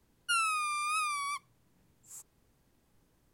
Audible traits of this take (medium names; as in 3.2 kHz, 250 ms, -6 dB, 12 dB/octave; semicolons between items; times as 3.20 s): noise floor -72 dBFS; spectral tilt 0.0 dB/octave